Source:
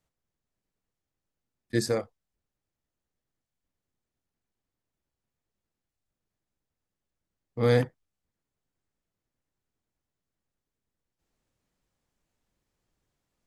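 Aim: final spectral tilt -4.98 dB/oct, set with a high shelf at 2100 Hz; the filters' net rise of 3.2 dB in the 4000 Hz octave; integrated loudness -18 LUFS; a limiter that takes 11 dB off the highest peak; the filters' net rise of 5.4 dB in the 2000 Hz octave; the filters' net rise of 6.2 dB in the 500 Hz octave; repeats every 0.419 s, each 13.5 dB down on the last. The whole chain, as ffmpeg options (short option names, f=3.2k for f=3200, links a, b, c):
-af "equalizer=f=500:t=o:g=6.5,equalizer=f=2k:t=o:g=7.5,highshelf=f=2.1k:g=-6,equalizer=f=4k:t=o:g=8,alimiter=limit=-16.5dB:level=0:latency=1,aecho=1:1:419|838:0.211|0.0444,volume=13.5dB"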